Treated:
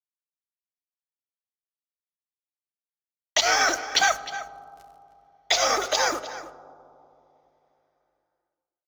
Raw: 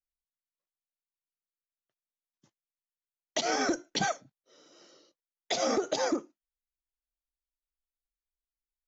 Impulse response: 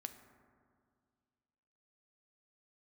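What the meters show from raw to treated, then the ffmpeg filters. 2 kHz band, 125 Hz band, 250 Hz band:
+12.0 dB, −5.0 dB, −6.5 dB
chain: -filter_complex "[0:a]highpass=1000,aeval=exprs='val(0)+0.000562*(sin(2*PI*50*n/s)+sin(2*PI*2*50*n/s)/2+sin(2*PI*3*50*n/s)/3+sin(2*PI*4*50*n/s)/4+sin(2*PI*5*50*n/s)/5)':channel_layout=same,acrusher=bits=7:mix=0:aa=0.5,asplit=2[link_01][link_02];[link_02]adelay=309,volume=-13dB,highshelf=frequency=4000:gain=-6.95[link_03];[link_01][link_03]amix=inputs=2:normalize=0,asplit=2[link_04][link_05];[1:a]atrim=start_sample=2205,asetrate=29106,aresample=44100,highshelf=frequency=4800:gain=-9.5[link_06];[link_05][link_06]afir=irnorm=-1:irlink=0,volume=4dB[link_07];[link_04][link_07]amix=inputs=2:normalize=0,volume=6.5dB"

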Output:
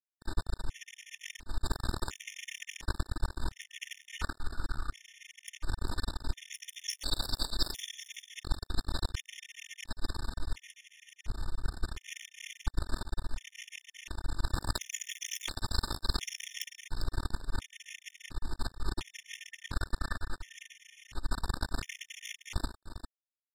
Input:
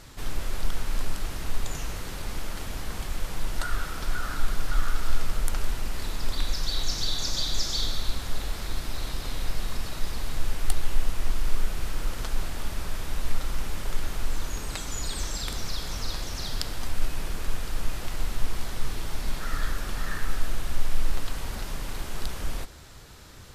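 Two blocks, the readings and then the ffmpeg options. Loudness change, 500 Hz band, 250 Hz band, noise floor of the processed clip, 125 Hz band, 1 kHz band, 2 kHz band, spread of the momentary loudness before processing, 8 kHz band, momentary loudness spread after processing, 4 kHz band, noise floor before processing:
−6.0 dB, −8.0 dB, −5.0 dB, −81 dBFS, −5.5 dB, −6.0 dB, −5.0 dB, 7 LU, −6.5 dB, 11 LU, −6.0 dB, −36 dBFS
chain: -filter_complex "[0:a]lowpass=8100,equalizer=frequency=580:width_type=o:width=0.23:gain=-13.5,aecho=1:1:3.3:0.68,bandreject=frequency=285.6:width_type=h:width=4,bandreject=frequency=571.2:width_type=h:width=4,bandreject=frequency=856.8:width_type=h:width=4,bandreject=frequency=1142.4:width_type=h:width=4,bandreject=frequency=1428:width_type=h:width=4,bandreject=frequency=1713.6:width_type=h:width=4,bandreject=frequency=1999.2:width_type=h:width=4,bandreject=frequency=2284.8:width_type=h:width=4,bandreject=frequency=2570.4:width_type=h:width=4,bandreject=frequency=2856:width_type=h:width=4,bandreject=frequency=3141.6:width_type=h:width=4,bandreject=frequency=3427.2:width_type=h:width=4,bandreject=frequency=3712.8:width_type=h:width=4,bandreject=frequency=3998.4:width_type=h:width=4,bandreject=frequency=4284:width_type=h:width=4,bandreject=frequency=4569.6:width_type=h:width=4,bandreject=frequency=4855.2:width_type=h:width=4,bandreject=frequency=5140.8:width_type=h:width=4,bandreject=frequency=5426.4:width_type=h:width=4,bandreject=frequency=5712:width_type=h:width=4,bandreject=frequency=5997.6:width_type=h:width=4,bandreject=frequency=6283.2:width_type=h:width=4,bandreject=frequency=6568.8:width_type=h:width=4,bandreject=frequency=6854.4:width_type=h:width=4,bandreject=frequency=7140:width_type=h:width=4,bandreject=frequency=7425.6:width_type=h:width=4,bandreject=frequency=7711.2:width_type=h:width=4,bandreject=frequency=7996.8:width_type=h:width=4,bandreject=frequency=8282.4:width_type=h:width=4,bandreject=frequency=8568:width_type=h:width=4,bandreject=frequency=8853.6:width_type=h:width=4,bandreject=frequency=9139.2:width_type=h:width=4,bandreject=frequency=9424.8:width_type=h:width=4,bandreject=frequency=9710.4:width_type=h:width=4,acontrast=77,alimiter=limit=-6.5dB:level=0:latency=1:release=224,areverse,acompressor=threshold=-19dB:ratio=16,areverse,acrusher=bits=2:mix=0:aa=0.5,asplit=2[link_01][link_02];[link_02]aecho=0:1:399:0.237[link_03];[link_01][link_03]amix=inputs=2:normalize=0,asoftclip=type=tanh:threshold=-11dB,afftfilt=real='re*gt(sin(2*PI*0.71*pts/sr)*(1-2*mod(floor(b*sr/1024/1800),2)),0)':imag='im*gt(sin(2*PI*0.71*pts/sr)*(1-2*mod(floor(b*sr/1024/1800),2)),0)':win_size=1024:overlap=0.75,volume=-1.5dB"

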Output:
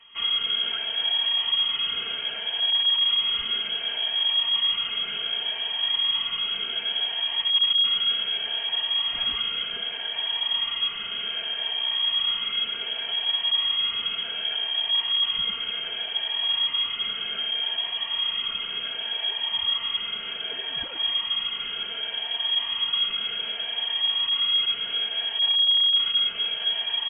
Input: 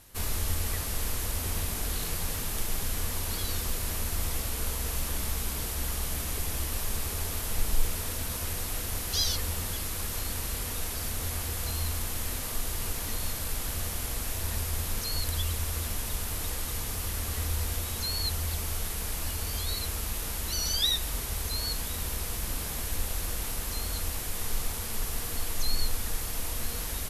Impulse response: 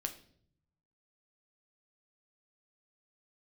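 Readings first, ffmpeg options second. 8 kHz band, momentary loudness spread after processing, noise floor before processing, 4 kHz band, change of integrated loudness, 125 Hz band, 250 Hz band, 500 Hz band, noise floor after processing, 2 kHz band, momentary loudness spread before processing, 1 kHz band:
below −40 dB, 8 LU, −35 dBFS, +16.5 dB, +8.5 dB, below −20 dB, below −10 dB, −3.5 dB, −34 dBFS, +6.5 dB, 3 LU, +1.5 dB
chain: -filter_complex "[0:a]afftfilt=real='re*pow(10,11/40*sin(2*PI*(1.4*log(max(b,1)*sr/1024/100)/log(2)-(-0.66)*(pts-256)/sr)))':imag='im*pow(10,11/40*sin(2*PI*(1.4*log(max(b,1)*sr/1024/100)/log(2)-(-0.66)*(pts-256)/sr)))':win_size=1024:overlap=0.75,asplit=2[link_01][link_02];[link_02]adelay=258,lowpass=frequency=2000:poles=1,volume=-11dB,asplit=2[link_03][link_04];[link_04]adelay=258,lowpass=frequency=2000:poles=1,volume=0.54,asplit=2[link_05][link_06];[link_06]adelay=258,lowpass=frequency=2000:poles=1,volume=0.54,asplit=2[link_07][link_08];[link_08]adelay=258,lowpass=frequency=2000:poles=1,volume=0.54,asplit=2[link_09][link_10];[link_10]adelay=258,lowpass=frequency=2000:poles=1,volume=0.54,asplit=2[link_11][link_12];[link_12]adelay=258,lowpass=frequency=2000:poles=1,volume=0.54[link_13];[link_01][link_03][link_05][link_07][link_09][link_11][link_13]amix=inputs=7:normalize=0,aresample=16000,asoftclip=type=hard:threshold=-24.5dB,aresample=44100,aecho=1:1:4.2:0.65,lowpass=frequency=2800:width_type=q:width=0.5098,lowpass=frequency=2800:width_type=q:width=0.6013,lowpass=frequency=2800:width_type=q:width=0.9,lowpass=frequency=2800:width_type=q:width=2.563,afreqshift=-3300,volume=1.5dB"

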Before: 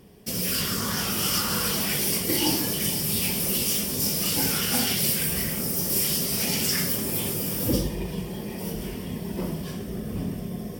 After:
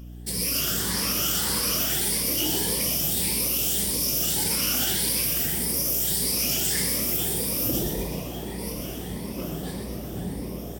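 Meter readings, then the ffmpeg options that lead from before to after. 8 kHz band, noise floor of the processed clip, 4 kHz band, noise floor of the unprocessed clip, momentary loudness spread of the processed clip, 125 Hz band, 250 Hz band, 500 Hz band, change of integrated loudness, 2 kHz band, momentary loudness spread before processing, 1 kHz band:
+2.0 dB, −35 dBFS, 0.0 dB, −35 dBFS, 11 LU, −2.5 dB, −3.0 dB, −1.0 dB, +1.0 dB, −1.5 dB, 11 LU, −2.0 dB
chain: -filter_complex "[0:a]afftfilt=real='re*pow(10,10/40*sin(2*PI*(0.89*log(max(b,1)*sr/1024/100)/log(2)-(1.7)*(pts-256)/sr)))':imag='im*pow(10,10/40*sin(2*PI*(0.89*log(max(b,1)*sr/1024/100)/log(2)-(1.7)*(pts-256)/sr)))':win_size=1024:overlap=0.75,equalizer=frequency=11000:width_type=o:width=2.8:gain=5.5,alimiter=limit=-12dB:level=0:latency=1:release=25,asplit=9[link_01][link_02][link_03][link_04][link_05][link_06][link_07][link_08][link_09];[link_02]adelay=123,afreqshift=100,volume=-6dB[link_10];[link_03]adelay=246,afreqshift=200,volume=-10.4dB[link_11];[link_04]adelay=369,afreqshift=300,volume=-14.9dB[link_12];[link_05]adelay=492,afreqshift=400,volume=-19.3dB[link_13];[link_06]adelay=615,afreqshift=500,volume=-23.7dB[link_14];[link_07]adelay=738,afreqshift=600,volume=-28.2dB[link_15];[link_08]adelay=861,afreqshift=700,volume=-32.6dB[link_16];[link_09]adelay=984,afreqshift=800,volume=-37.1dB[link_17];[link_01][link_10][link_11][link_12][link_13][link_14][link_15][link_16][link_17]amix=inputs=9:normalize=0,aeval=exprs='val(0)+0.02*(sin(2*PI*60*n/s)+sin(2*PI*2*60*n/s)/2+sin(2*PI*3*60*n/s)/3+sin(2*PI*4*60*n/s)/4+sin(2*PI*5*60*n/s)/5)':channel_layout=same,volume=-4.5dB"

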